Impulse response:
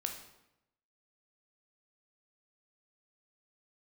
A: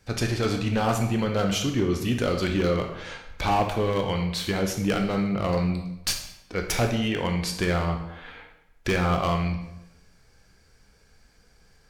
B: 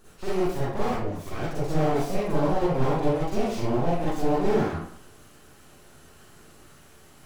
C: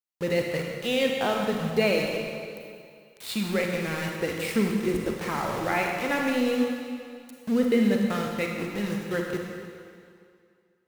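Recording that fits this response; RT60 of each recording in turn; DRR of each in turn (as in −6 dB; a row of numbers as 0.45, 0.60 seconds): A; 0.90, 0.60, 2.3 seconds; 3.5, −9.0, 0.5 decibels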